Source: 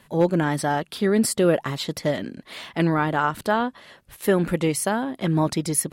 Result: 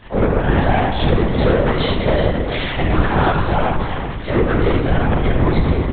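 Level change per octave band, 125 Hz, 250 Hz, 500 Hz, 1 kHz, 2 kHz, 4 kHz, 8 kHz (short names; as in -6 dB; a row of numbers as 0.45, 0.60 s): +9.5 dB, +4.0 dB, +5.0 dB, +6.0 dB, +6.0 dB, +6.0 dB, under -40 dB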